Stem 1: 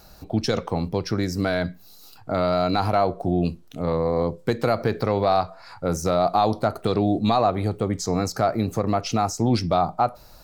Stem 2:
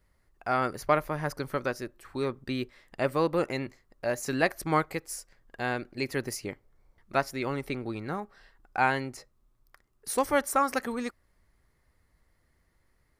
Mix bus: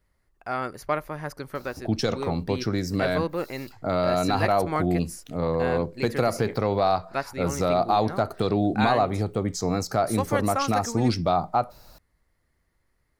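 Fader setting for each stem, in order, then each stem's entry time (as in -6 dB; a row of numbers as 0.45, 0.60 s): -2.0, -2.0 dB; 1.55, 0.00 s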